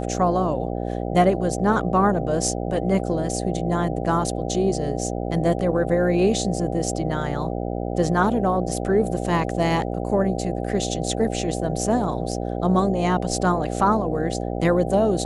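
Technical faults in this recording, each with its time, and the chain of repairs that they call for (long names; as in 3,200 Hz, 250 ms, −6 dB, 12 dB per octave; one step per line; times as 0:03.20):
mains buzz 60 Hz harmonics 13 −27 dBFS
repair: hum removal 60 Hz, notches 13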